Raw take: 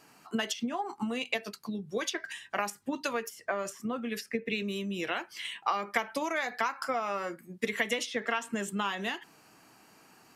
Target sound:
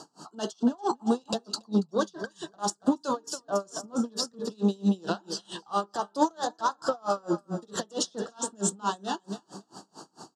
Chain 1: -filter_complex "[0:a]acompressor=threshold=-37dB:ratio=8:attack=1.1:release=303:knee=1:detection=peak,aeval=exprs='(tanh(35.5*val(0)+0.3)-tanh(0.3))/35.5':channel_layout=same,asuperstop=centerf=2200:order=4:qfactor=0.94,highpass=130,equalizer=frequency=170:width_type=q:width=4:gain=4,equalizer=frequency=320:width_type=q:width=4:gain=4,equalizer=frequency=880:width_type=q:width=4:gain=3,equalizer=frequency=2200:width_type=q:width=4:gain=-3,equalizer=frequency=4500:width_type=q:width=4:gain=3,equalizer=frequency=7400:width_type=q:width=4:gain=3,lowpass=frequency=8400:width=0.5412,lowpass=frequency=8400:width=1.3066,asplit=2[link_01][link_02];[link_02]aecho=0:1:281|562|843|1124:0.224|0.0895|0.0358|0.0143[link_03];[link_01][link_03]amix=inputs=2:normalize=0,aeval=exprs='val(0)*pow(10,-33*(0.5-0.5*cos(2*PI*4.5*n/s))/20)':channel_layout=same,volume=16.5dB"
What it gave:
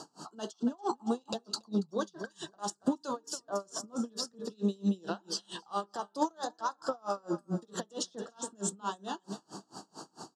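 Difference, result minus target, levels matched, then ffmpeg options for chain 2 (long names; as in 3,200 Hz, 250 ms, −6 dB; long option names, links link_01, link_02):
downward compressor: peak gain reduction +8 dB
-filter_complex "[0:a]acompressor=threshold=-28dB:ratio=8:attack=1.1:release=303:knee=1:detection=peak,aeval=exprs='(tanh(35.5*val(0)+0.3)-tanh(0.3))/35.5':channel_layout=same,asuperstop=centerf=2200:order=4:qfactor=0.94,highpass=130,equalizer=frequency=170:width_type=q:width=4:gain=4,equalizer=frequency=320:width_type=q:width=4:gain=4,equalizer=frequency=880:width_type=q:width=4:gain=3,equalizer=frequency=2200:width_type=q:width=4:gain=-3,equalizer=frequency=4500:width_type=q:width=4:gain=3,equalizer=frequency=7400:width_type=q:width=4:gain=3,lowpass=frequency=8400:width=0.5412,lowpass=frequency=8400:width=1.3066,asplit=2[link_01][link_02];[link_02]aecho=0:1:281|562|843|1124:0.224|0.0895|0.0358|0.0143[link_03];[link_01][link_03]amix=inputs=2:normalize=0,aeval=exprs='val(0)*pow(10,-33*(0.5-0.5*cos(2*PI*4.5*n/s))/20)':channel_layout=same,volume=16.5dB"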